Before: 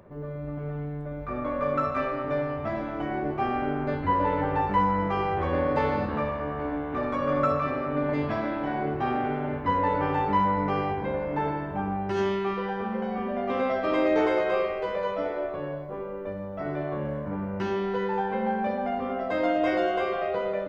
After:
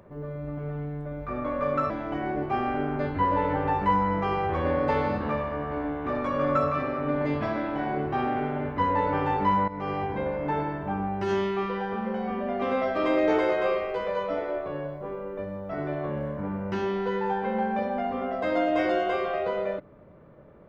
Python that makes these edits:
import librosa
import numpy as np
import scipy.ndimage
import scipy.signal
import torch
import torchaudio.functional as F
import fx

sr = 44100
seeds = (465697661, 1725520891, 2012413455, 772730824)

y = fx.edit(x, sr, fx.cut(start_s=1.9, length_s=0.88),
    fx.fade_in_from(start_s=10.56, length_s=0.51, curve='qsin', floor_db=-15.0), tone=tone)